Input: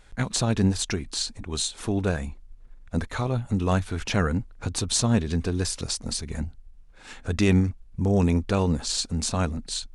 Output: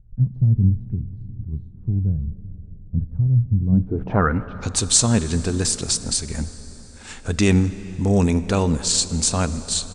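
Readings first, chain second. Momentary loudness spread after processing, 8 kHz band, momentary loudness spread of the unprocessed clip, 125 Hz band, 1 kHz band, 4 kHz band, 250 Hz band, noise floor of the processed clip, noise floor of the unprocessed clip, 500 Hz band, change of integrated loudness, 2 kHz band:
15 LU, +8.0 dB, 10 LU, +6.5 dB, +3.5 dB, +3.5 dB, +3.5 dB, -41 dBFS, -50 dBFS, +2.5 dB, +5.5 dB, +2.0 dB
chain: outdoor echo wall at 70 m, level -30 dB; low-pass sweep 130 Hz -> 8200 Hz, 3.64–4.73; plate-style reverb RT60 5 s, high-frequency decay 0.75×, DRR 13.5 dB; gain +3.5 dB

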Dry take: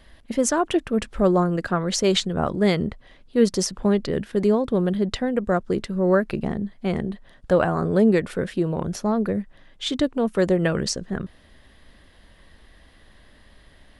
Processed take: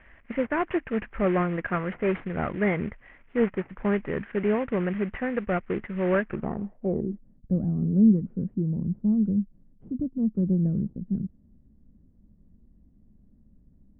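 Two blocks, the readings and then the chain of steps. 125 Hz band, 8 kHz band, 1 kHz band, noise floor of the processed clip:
-1.5 dB, under -40 dB, -6.0 dB, -58 dBFS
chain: CVSD 16 kbps; low-pass sweep 2000 Hz -> 210 Hz, 6.2–7.3; gain -5 dB

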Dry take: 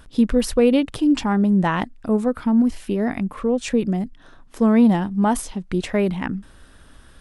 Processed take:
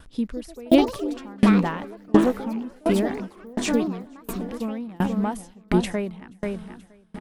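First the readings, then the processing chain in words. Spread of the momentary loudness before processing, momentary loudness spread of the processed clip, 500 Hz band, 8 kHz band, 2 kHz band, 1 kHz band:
9 LU, 15 LU, -3.5 dB, -4.5 dB, -3.0 dB, -3.5 dB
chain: AGC gain up to 5.5 dB; on a send: feedback echo 0.48 s, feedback 59%, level -12 dB; on the sum: echoes that change speed 0.23 s, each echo +5 st, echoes 3, each echo -6 dB; dB-ramp tremolo decaying 1.4 Hz, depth 31 dB

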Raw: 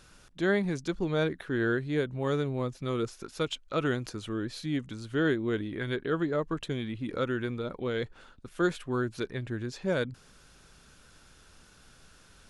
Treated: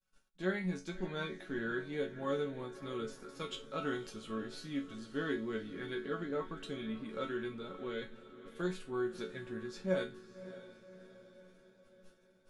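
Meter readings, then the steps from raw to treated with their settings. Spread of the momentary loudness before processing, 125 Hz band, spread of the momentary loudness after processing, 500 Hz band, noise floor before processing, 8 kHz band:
7 LU, -12.0 dB, 14 LU, -7.5 dB, -58 dBFS, -8.0 dB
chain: resonator bank F#3 minor, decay 0.26 s; expander -57 dBFS; diffused feedback echo 0.591 s, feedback 53%, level -14.5 dB; gain +8 dB

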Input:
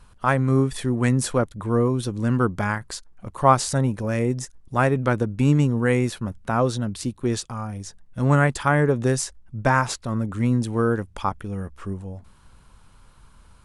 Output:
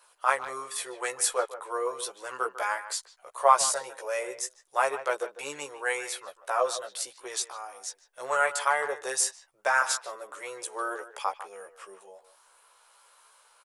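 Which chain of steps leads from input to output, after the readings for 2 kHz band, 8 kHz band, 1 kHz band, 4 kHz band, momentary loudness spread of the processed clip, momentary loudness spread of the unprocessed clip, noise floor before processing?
-2.0 dB, +3.0 dB, -2.5 dB, -0.5 dB, 15 LU, 13 LU, -52 dBFS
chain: inverse Chebyshev high-pass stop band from 250 Hz, stop band 40 dB; high shelf 7400 Hz +11 dB; chorus voices 2, 0.19 Hz, delay 15 ms, depth 1.2 ms; speakerphone echo 0.15 s, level -13 dB

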